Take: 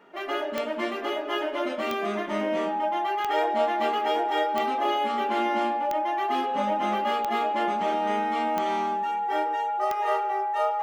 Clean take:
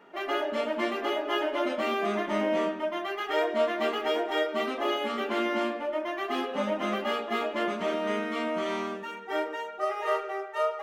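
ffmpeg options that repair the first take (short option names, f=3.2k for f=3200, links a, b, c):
-af "adeclick=t=4,bandreject=f=830:w=30"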